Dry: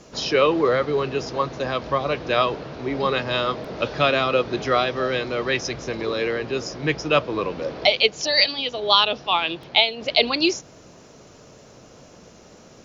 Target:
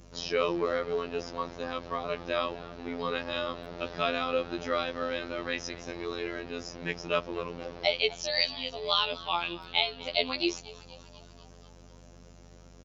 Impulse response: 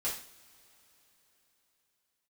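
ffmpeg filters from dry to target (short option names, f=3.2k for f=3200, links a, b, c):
-filter_complex "[0:a]asplit=7[a][b][c][d][e][f][g];[b]adelay=243,afreqshift=97,volume=-19.5dB[h];[c]adelay=486,afreqshift=194,volume=-23.5dB[i];[d]adelay=729,afreqshift=291,volume=-27.5dB[j];[e]adelay=972,afreqshift=388,volume=-31.5dB[k];[f]adelay=1215,afreqshift=485,volume=-35.6dB[l];[g]adelay=1458,afreqshift=582,volume=-39.6dB[m];[a][h][i][j][k][l][m]amix=inputs=7:normalize=0,afftfilt=real='hypot(re,im)*cos(PI*b)':imag='0':win_size=2048:overlap=0.75,aeval=exprs='val(0)+0.00501*(sin(2*PI*50*n/s)+sin(2*PI*2*50*n/s)/2+sin(2*PI*3*50*n/s)/3+sin(2*PI*4*50*n/s)/4+sin(2*PI*5*50*n/s)/5)':c=same,volume=-6.5dB"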